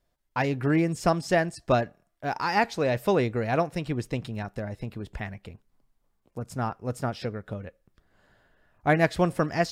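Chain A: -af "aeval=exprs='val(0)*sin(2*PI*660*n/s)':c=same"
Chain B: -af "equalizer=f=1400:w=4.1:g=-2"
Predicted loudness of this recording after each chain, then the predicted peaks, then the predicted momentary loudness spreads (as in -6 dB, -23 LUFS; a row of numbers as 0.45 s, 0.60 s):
-30.5 LUFS, -28.0 LUFS; -9.0 dBFS, -8.5 dBFS; 13 LU, 14 LU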